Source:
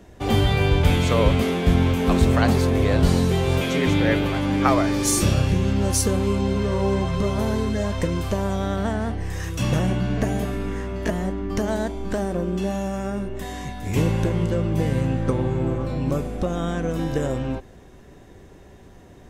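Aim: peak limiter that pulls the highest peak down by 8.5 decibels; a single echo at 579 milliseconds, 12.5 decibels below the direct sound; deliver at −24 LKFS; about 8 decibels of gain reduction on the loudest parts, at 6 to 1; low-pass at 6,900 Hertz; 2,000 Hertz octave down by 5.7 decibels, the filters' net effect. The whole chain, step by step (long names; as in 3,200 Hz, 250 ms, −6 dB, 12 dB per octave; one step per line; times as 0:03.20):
low-pass filter 6,900 Hz
parametric band 2,000 Hz −7.5 dB
downward compressor 6 to 1, threshold −21 dBFS
brickwall limiter −19 dBFS
single-tap delay 579 ms −12.5 dB
level +4.5 dB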